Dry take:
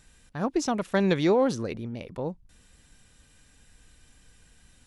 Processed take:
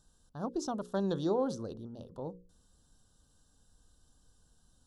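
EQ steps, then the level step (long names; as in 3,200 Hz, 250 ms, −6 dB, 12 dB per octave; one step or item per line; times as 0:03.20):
Butterworth band-reject 2,200 Hz, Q 1
high-shelf EQ 8,400 Hz −3.5 dB
mains-hum notches 60/120/180/240/300/360/420/480/540 Hz
−8.0 dB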